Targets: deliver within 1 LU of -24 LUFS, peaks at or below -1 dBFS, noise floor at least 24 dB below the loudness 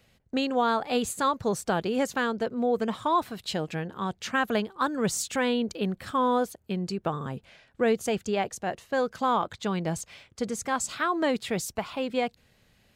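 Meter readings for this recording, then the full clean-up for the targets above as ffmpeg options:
loudness -28.5 LUFS; peak -13.5 dBFS; loudness target -24.0 LUFS
-> -af "volume=4.5dB"

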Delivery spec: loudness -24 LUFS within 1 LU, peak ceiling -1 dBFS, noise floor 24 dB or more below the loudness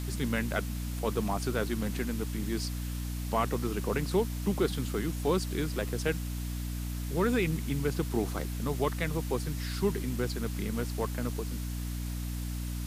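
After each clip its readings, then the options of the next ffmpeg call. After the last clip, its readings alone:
hum 60 Hz; harmonics up to 300 Hz; hum level -32 dBFS; noise floor -35 dBFS; noise floor target -57 dBFS; loudness -32.5 LUFS; peak -14.5 dBFS; loudness target -24.0 LUFS
-> -af "bandreject=f=60:t=h:w=6,bandreject=f=120:t=h:w=6,bandreject=f=180:t=h:w=6,bandreject=f=240:t=h:w=6,bandreject=f=300:t=h:w=6"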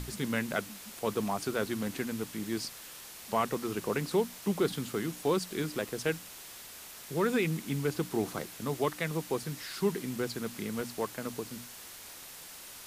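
hum none; noise floor -48 dBFS; noise floor target -58 dBFS
-> -af "afftdn=nr=10:nf=-48"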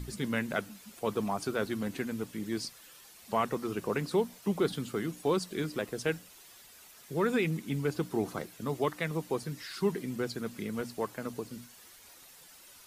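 noise floor -55 dBFS; noise floor target -58 dBFS
-> -af "afftdn=nr=6:nf=-55"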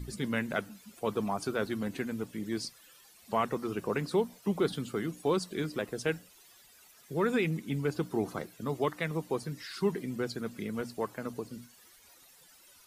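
noise floor -59 dBFS; loudness -34.0 LUFS; peak -16.0 dBFS; loudness target -24.0 LUFS
-> -af "volume=10dB"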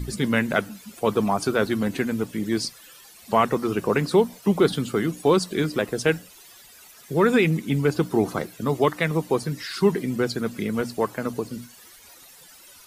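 loudness -24.0 LUFS; peak -6.0 dBFS; noise floor -49 dBFS

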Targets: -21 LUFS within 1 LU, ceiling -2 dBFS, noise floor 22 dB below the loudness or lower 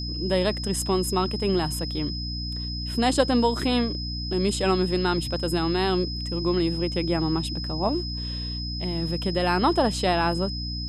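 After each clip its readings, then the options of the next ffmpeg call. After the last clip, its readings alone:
hum 60 Hz; harmonics up to 300 Hz; hum level -30 dBFS; steady tone 5100 Hz; tone level -33 dBFS; loudness -25.0 LUFS; peak -8.0 dBFS; loudness target -21.0 LUFS
-> -af "bandreject=f=60:t=h:w=6,bandreject=f=120:t=h:w=6,bandreject=f=180:t=h:w=6,bandreject=f=240:t=h:w=6,bandreject=f=300:t=h:w=6"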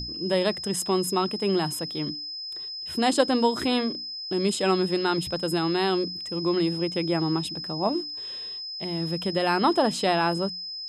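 hum none; steady tone 5100 Hz; tone level -33 dBFS
-> -af "bandreject=f=5.1k:w=30"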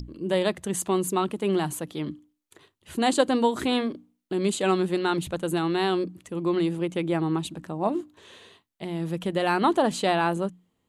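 steady tone none; loudness -26.5 LUFS; peak -8.5 dBFS; loudness target -21.0 LUFS
-> -af "volume=5.5dB"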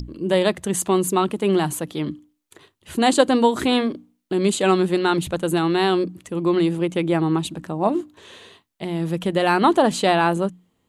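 loudness -21.0 LUFS; peak -3.0 dBFS; noise floor -70 dBFS

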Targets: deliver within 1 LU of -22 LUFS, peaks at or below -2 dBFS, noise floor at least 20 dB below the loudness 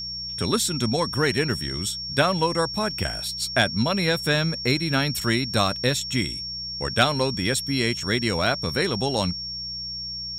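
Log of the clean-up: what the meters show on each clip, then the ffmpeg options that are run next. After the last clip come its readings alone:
hum 60 Hz; harmonics up to 180 Hz; hum level -43 dBFS; steady tone 5500 Hz; tone level -30 dBFS; loudness -23.5 LUFS; peak -6.5 dBFS; loudness target -22.0 LUFS
-> -af "bandreject=f=60:t=h:w=4,bandreject=f=120:t=h:w=4,bandreject=f=180:t=h:w=4"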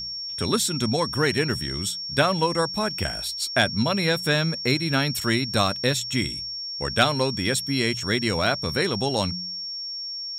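hum none; steady tone 5500 Hz; tone level -30 dBFS
-> -af "bandreject=f=5.5k:w=30"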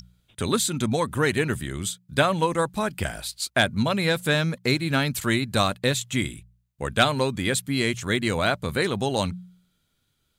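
steady tone none; loudness -24.5 LUFS; peak -6.5 dBFS; loudness target -22.0 LUFS
-> -af "volume=2.5dB"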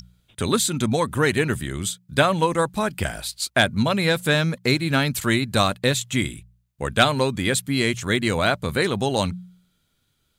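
loudness -22.0 LUFS; peak -4.0 dBFS; noise floor -70 dBFS

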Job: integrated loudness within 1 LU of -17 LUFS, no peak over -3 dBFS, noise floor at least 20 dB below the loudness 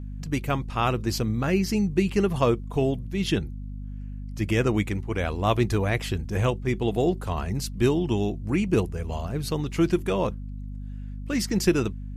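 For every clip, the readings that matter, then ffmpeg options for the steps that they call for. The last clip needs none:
hum 50 Hz; harmonics up to 250 Hz; hum level -33 dBFS; loudness -26.0 LUFS; peak -8.0 dBFS; loudness target -17.0 LUFS
-> -af "bandreject=f=50:t=h:w=6,bandreject=f=100:t=h:w=6,bandreject=f=150:t=h:w=6,bandreject=f=200:t=h:w=6,bandreject=f=250:t=h:w=6"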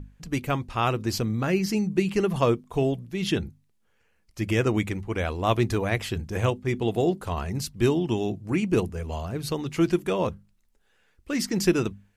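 hum none; loudness -26.5 LUFS; peak -8.5 dBFS; loudness target -17.0 LUFS
-> -af "volume=9.5dB,alimiter=limit=-3dB:level=0:latency=1"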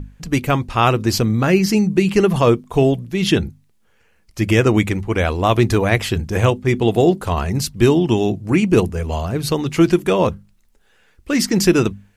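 loudness -17.5 LUFS; peak -3.0 dBFS; noise floor -58 dBFS

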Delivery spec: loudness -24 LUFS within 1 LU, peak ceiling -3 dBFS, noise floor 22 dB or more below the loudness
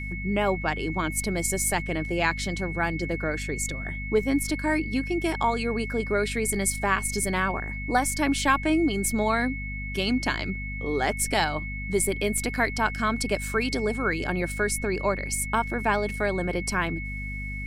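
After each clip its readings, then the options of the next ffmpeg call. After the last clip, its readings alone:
hum 50 Hz; harmonics up to 250 Hz; hum level -32 dBFS; steady tone 2200 Hz; tone level -35 dBFS; loudness -26.5 LUFS; peak -8.5 dBFS; loudness target -24.0 LUFS
-> -af "bandreject=f=50:t=h:w=4,bandreject=f=100:t=h:w=4,bandreject=f=150:t=h:w=4,bandreject=f=200:t=h:w=4,bandreject=f=250:t=h:w=4"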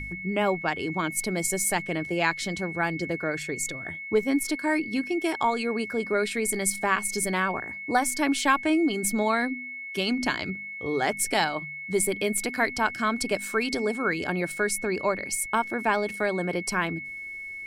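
hum none; steady tone 2200 Hz; tone level -35 dBFS
-> -af "bandreject=f=2.2k:w=30"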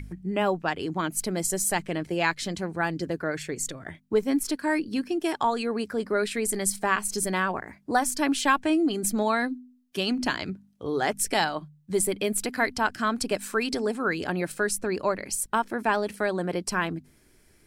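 steady tone none; loudness -27.0 LUFS; peak -9.0 dBFS; loudness target -24.0 LUFS
-> -af "volume=3dB"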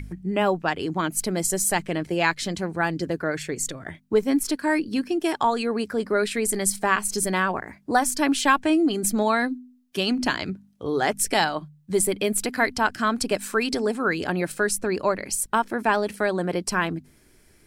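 loudness -24.0 LUFS; peak -6.0 dBFS; noise floor -57 dBFS

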